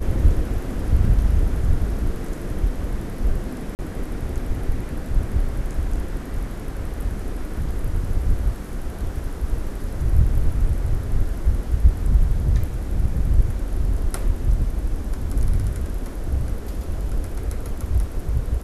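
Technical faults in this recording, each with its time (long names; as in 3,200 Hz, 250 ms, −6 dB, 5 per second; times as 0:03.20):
0:03.75–0:03.79: drop-out 39 ms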